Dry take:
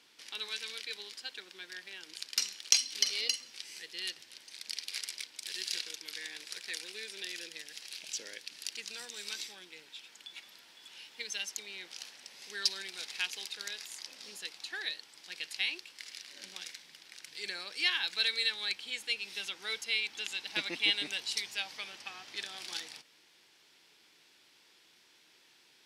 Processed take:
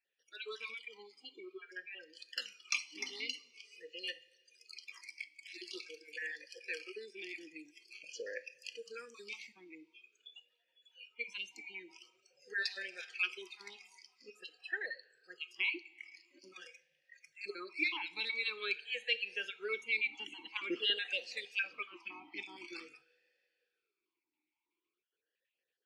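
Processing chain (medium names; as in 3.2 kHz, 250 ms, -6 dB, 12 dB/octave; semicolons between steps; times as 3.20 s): random holes in the spectrogram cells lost 34%; spectral noise reduction 25 dB; two-slope reverb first 0.47 s, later 2.9 s, from -18 dB, DRR 13.5 dB; talking filter e-u 0.47 Hz; trim +14 dB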